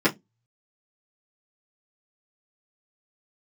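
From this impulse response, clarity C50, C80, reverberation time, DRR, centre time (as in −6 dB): 22.0 dB, 34.0 dB, 0.15 s, −10.0 dB, 13 ms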